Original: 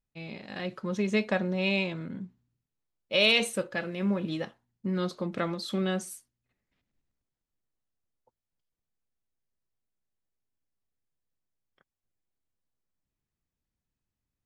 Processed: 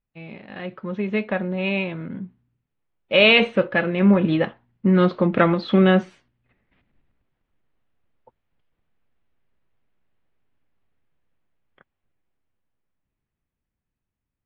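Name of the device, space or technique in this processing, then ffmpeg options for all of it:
action camera in a waterproof case: -af "lowpass=f=2900:w=0.5412,lowpass=f=2900:w=1.3066,dynaudnorm=f=470:g=13:m=5.01,volume=1.33" -ar 48000 -c:a aac -b:a 48k

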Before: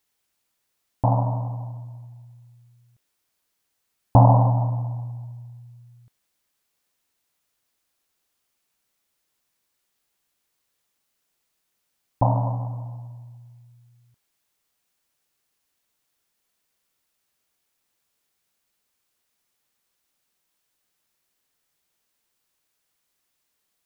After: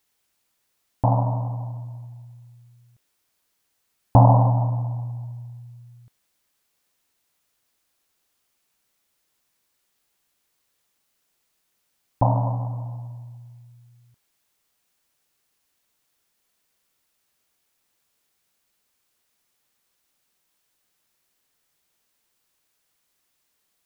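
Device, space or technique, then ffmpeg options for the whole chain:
parallel compression: -filter_complex "[0:a]asplit=2[s0][s1];[s1]acompressor=threshold=0.02:ratio=6,volume=0.398[s2];[s0][s2]amix=inputs=2:normalize=0"

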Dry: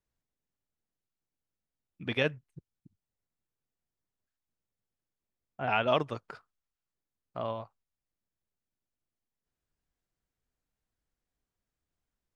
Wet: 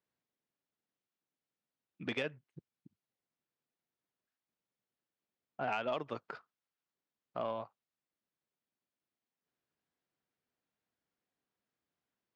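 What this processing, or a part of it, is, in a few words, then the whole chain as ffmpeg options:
AM radio: -af "highpass=180,lowpass=4300,acompressor=threshold=0.0251:ratio=8,asoftclip=type=tanh:threshold=0.0562,volume=1.12"

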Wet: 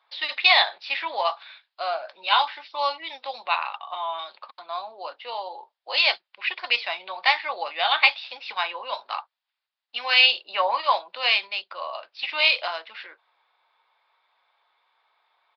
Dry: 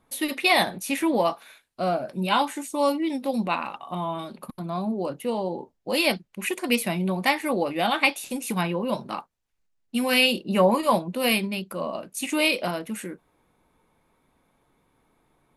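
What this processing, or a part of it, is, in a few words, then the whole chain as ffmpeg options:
musical greeting card: -af "aresample=11025,aresample=44100,highpass=f=760:w=0.5412,highpass=f=760:w=1.3066,equalizer=f=3600:t=o:w=0.52:g=5,volume=1.41"

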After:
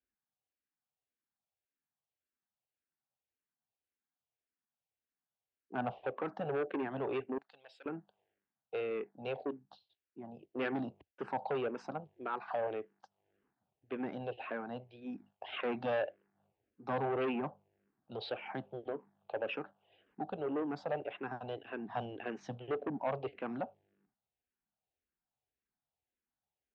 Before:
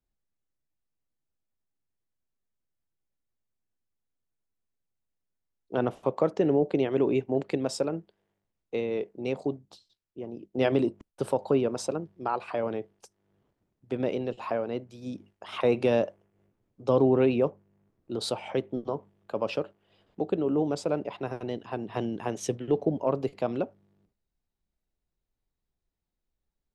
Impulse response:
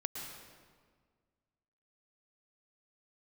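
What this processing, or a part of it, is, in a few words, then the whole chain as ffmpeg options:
barber-pole phaser into a guitar amplifier: -filter_complex "[0:a]asplit=2[s0][s1];[s1]afreqshift=-1.8[s2];[s0][s2]amix=inputs=2:normalize=1,asoftclip=type=tanh:threshold=0.0473,highpass=97,equalizer=f=100:t=q:w=4:g=-5,equalizer=f=170:t=q:w=4:g=-6,equalizer=f=340:t=q:w=4:g=-3,equalizer=f=770:t=q:w=4:g=8,equalizer=f=1600:t=q:w=4:g=6,equalizer=f=2700:t=q:w=4:g=4,lowpass=f=3600:w=0.5412,lowpass=f=3600:w=1.3066,asettb=1/sr,asplit=3[s3][s4][s5];[s3]atrim=end=7.384[s6];[s4]atrim=start=7.38:end=7.86,asetpts=PTS-STARTPTS,afade=t=in:d=0.004:c=qsin,afade=t=out:st=0.476:d=0.004:c=qsin,aderivative[s7];[s5]atrim=start=7.856[s8];[s6][s7]acrossfade=d=0.004:c1=hsin:c2=qsin[s9];[s9][s8]acrossfade=d=0.004:c1=qsin:c2=hsin,volume=0.668"

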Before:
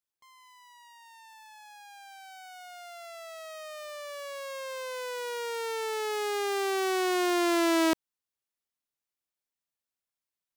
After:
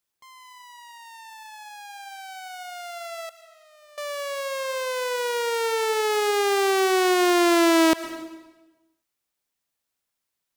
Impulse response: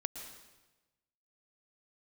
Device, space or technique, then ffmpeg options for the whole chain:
compressed reverb return: -filter_complex "[0:a]asettb=1/sr,asplit=3[s0][s1][s2];[s0]atrim=end=3.294[s3];[s1]atrim=start=3.29:end=3.98,asetpts=PTS-STARTPTS,afade=t=in:d=0.004:c=qsin,afade=t=out:st=0.686:d=0.004:c=qsin,agate=range=0.0224:threshold=0.0355:ratio=3:detection=peak[s4];[s2]atrim=start=3.976[s5];[s3][s4]acrossfade=d=0.004:c1=hsin:c2=qsin[s6];[s6][s5]acrossfade=d=0.004:c1=qsin:c2=hsin,asplit=2[s7][s8];[1:a]atrim=start_sample=2205[s9];[s8][s9]afir=irnorm=-1:irlink=0,acompressor=threshold=0.0355:ratio=6,volume=0.75[s10];[s7][s10]amix=inputs=2:normalize=0,volume=1.68"

